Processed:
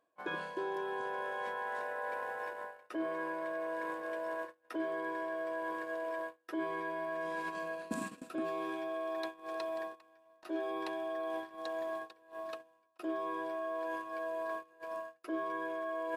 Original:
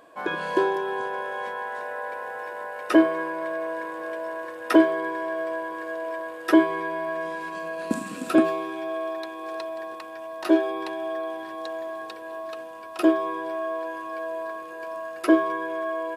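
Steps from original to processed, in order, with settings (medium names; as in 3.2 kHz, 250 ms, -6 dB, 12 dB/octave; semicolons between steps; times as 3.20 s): gate -33 dBFS, range -25 dB; reverse; compression 10:1, threshold -35 dBFS, peak gain reduction 23.5 dB; reverse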